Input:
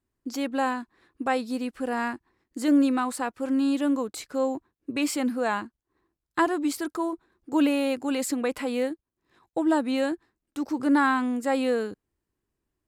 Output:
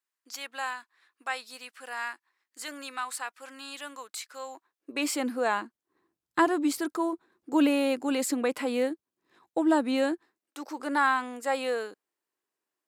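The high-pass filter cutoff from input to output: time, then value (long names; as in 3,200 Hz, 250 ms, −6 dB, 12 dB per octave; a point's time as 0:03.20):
0:04.45 1,300 Hz
0:05.09 310 Hz
0:05.59 310 Hz
0:06.61 80 Hz
0:06.98 200 Hz
0:10.07 200 Hz
0:10.58 550 Hz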